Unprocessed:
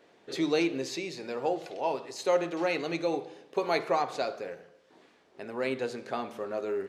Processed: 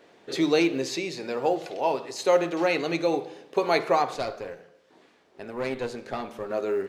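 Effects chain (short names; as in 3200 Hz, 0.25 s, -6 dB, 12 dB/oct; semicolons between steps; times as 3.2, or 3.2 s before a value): 4.14–6.5 tube stage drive 26 dB, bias 0.65; short-mantissa float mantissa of 6-bit; gain +5 dB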